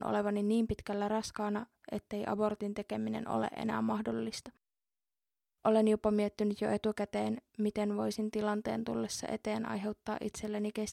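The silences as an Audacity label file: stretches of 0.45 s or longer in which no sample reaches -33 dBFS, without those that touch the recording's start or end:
4.460000	5.650000	silence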